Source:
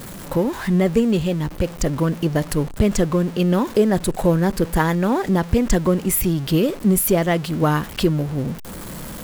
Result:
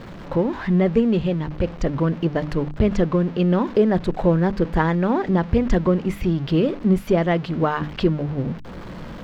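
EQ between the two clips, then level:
high-frequency loss of the air 230 metres
mains-hum notches 50/100/150/200/250/300 Hz
0.0 dB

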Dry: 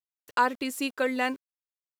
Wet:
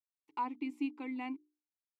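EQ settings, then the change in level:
formant filter u
mains-hum notches 60/120/180/240/300/360/420 Hz
+1.0 dB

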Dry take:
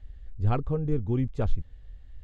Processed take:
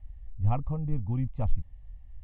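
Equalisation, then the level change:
low-pass filter 1,900 Hz 12 dB per octave
phaser with its sweep stopped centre 1,500 Hz, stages 6
0.0 dB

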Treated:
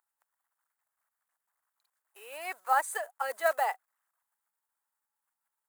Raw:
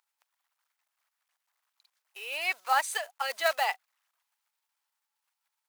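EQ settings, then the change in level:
flat-topped bell 3,700 Hz −12 dB
dynamic equaliser 360 Hz, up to +6 dB, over −45 dBFS, Q 0.88
−1.5 dB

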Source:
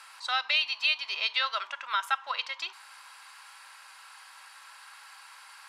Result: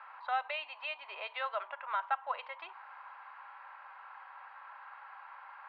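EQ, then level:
dynamic equaliser 1,300 Hz, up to −8 dB, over −43 dBFS, Q 1.1
four-pole ladder band-pass 850 Hz, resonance 25%
high-frequency loss of the air 420 metres
+17.0 dB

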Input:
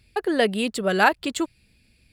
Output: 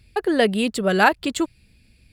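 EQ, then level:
low-shelf EQ 200 Hz +5.5 dB
+1.5 dB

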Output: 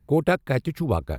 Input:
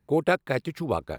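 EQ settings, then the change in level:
low-shelf EQ 81 Hz +10.5 dB
low-shelf EQ 190 Hz +8 dB
parametric band 12,000 Hz +9.5 dB 0.34 octaves
0.0 dB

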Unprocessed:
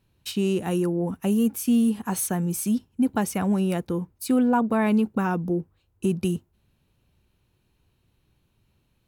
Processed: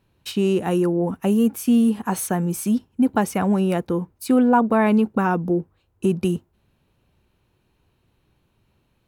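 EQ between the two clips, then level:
low-shelf EQ 280 Hz −7.5 dB
high-shelf EQ 2,300 Hz −9 dB
+8.0 dB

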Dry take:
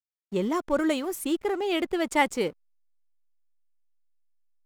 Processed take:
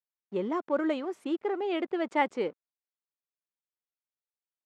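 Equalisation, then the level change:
Bessel high-pass filter 310 Hz, order 2
head-to-tape spacing loss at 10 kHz 29 dB
0.0 dB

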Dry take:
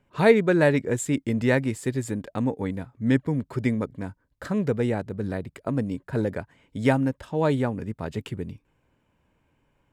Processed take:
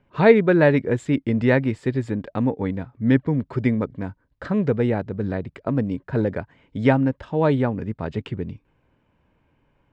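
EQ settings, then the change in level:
dynamic equaliser 6,700 Hz, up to −5 dB, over −55 dBFS, Q 2.5
high-frequency loss of the air 160 metres
+4.0 dB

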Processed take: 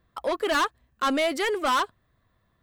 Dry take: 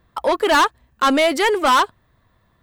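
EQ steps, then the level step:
notch filter 900 Hz, Q 8.9
−8.0 dB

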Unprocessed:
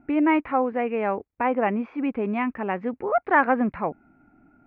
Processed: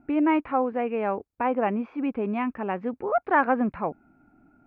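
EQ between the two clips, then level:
parametric band 2,000 Hz −5.5 dB 0.4 octaves
−1.5 dB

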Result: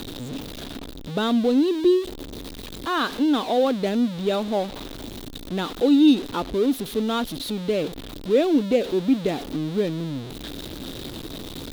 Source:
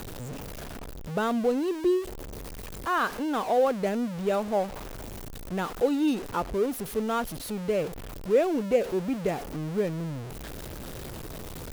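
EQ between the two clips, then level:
parametric band 280 Hz +11 dB 0.8 octaves
parametric band 3,700 Hz +15 dB 0.62 octaves
0.0 dB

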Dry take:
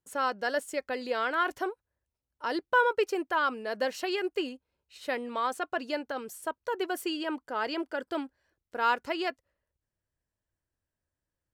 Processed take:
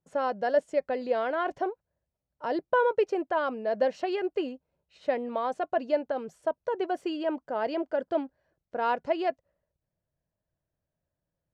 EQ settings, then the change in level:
graphic EQ with 15 bands 160 Hz +11 dB, 630 Hz +10 dB, 6,300 Hz +4 dB
dynamic equaliser 1,300 Hz, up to −5 dB, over −41 dBFS, Q 3.2
head-to-tape spacing loss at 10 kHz 23 dB
0.0 dB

